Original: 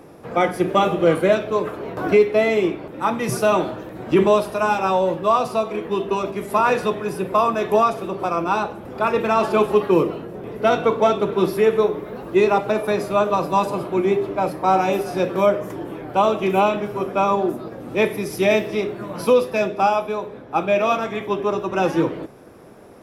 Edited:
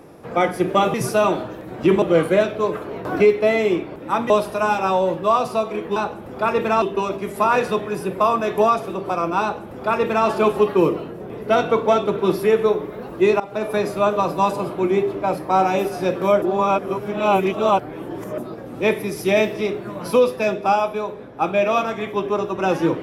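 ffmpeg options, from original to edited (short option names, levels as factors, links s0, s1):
-filter_complex "[0:a]asplit=9[s0][s1][s2][s3][s4][s5][s6][s7][s8];[s0]atrim=end=0.942[s9];[s1]atrim=start=3.218:end=4.302[s10];[s2]atrim=start=0.938:end=3.222[s11];[s3]atrim=start=4.298:end=5.962[s12];[s4]atrim=start=8.548:end=9.412[s13];[s5]atrim=start=5.958:end=12.54,asetpts=PTS-STARTPTS,afade=t=out:st=6.578:d=0.004:c=hsin:silence=0.105925[s14];[s6]atrim=start=12.54:end=15.562,asetpts=PTS-STARTPTS,afade=t=in:d=0.32:silence=0.105925[s15];[s7]atrim=start=15.558:end=17.522,asetpts=PTS-STARTPTS,areverse[s16];[s8]atrim=start=17.518[s17];[s9][s10]acrossfade=d=0.004:c1=hsin:c2=hsin[s18];[s18][s11]acrossfade=d=0.004:c1=hsin:c2=hsin[s19];[s19][s12]acrossfade=d=0.004:c1=hsin:c2=hsin[s20];[s20][s13]acrossfade=d=0.004:c1=hsin:c2=hsin[s21];[s14][s15]concat=n=2:v=0:a=1[s22];[s21][s22]acrossfade=d=0.004:c1=hsin:c2=hsin[s23];[s23][s16]acrossfade=d=0.004:c1=hsin:c2=hsin[s24];[s24][s17]acrossfade=d=0.004:c1=hsin:c2=hsin"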